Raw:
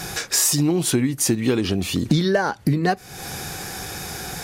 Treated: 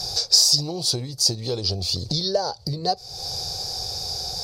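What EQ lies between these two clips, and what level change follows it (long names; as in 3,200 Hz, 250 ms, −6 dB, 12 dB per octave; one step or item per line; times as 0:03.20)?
drawn EQ curve 100 Hz 0 dB, 270 Hz −19 dB, 500 Hz 0 dB, 730 Hz −1 dB, 1,700 Hz −21 dB, 2,900 Hz −13 dB, 4,700 Hz +14 dB, 7,000 Hz −4 dB, 11,000 Hz −10 dB
0.0 dB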